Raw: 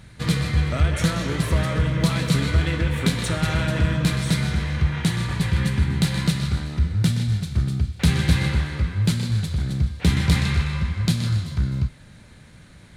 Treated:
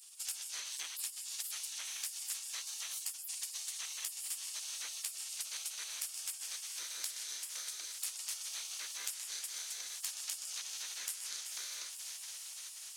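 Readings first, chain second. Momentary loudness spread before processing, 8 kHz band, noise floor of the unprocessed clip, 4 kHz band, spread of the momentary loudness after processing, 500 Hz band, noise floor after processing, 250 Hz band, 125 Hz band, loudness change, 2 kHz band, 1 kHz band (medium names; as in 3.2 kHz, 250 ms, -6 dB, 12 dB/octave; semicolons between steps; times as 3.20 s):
4 LU, -0.5 dB, -47 dBFS, -10.5 dB, 2 LU, -36.5 dB, -48 dBFS, under -40 dB, under -40 dB, -17.0 dB, -20.0 dB, -24.5 dB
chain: peaking EQ 6.1 kHz +13 dB 0.22 oct; echo that smears into a reverb 509 ms, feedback 73%, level -15 dB; spectral gate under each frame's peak -30 dB weak; differentiator; compression 4:1, threshold -48 dBFS, peak gain reduction 15.5 dB; trim +8 dB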